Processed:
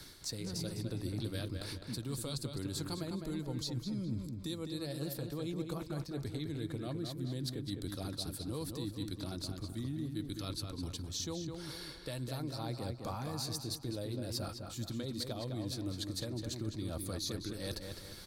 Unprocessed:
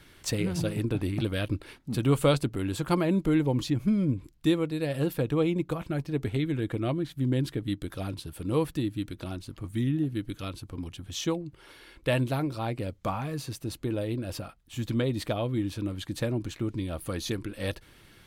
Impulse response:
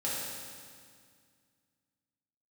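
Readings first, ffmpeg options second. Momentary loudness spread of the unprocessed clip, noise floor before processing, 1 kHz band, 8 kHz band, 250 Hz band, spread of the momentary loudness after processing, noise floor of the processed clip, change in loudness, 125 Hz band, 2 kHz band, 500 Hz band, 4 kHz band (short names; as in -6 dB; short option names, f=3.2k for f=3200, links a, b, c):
11 LU, -56 dBFS, -11.5 dB, -1.5 dB, -11.0 dB, 3 LU, -49 dBFS, -10.0 dB, -9.5 dB, -13.0 dB, -12.5 dB, -2.5 dB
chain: -filter_complex "[0:a]highshelf=f=3.5k:t=q:w=3:g=6.5,acrossover=split=120|3000[a][b][c];[b]acompressor=threshold=-28dB:ratio=6[d];[a][d][c]amix=inputs=3:normalize=0,alimiter=limit=-19dB:level=0:latency=1:release=297,areverse,acompressor=threshold=-40dB:ratio=4,areverse,asplit=2[e][f];[f]adelay=207,lowpass=f=3.5k:p=1,volume=-5dB,asplit=2[g][h];[h]adelay=207,lowpass=f=3.5k:p=1,volume=0.41,asplit=2[i][j];[j]adelay=207,lowpass=f=3.5k:p=1,volume=0.41,asplit=2[k][l];[l]adelay=207,lowpass=f=3.5k:p=1,volume=0.41,asplit=2[m][n];[n]adelay=207,lowpass=f=3.5k:p=1,volume=0.41[o];[e][g][i][k][m][o]amix=inputs=6:normalize=0,volume=1.5dB"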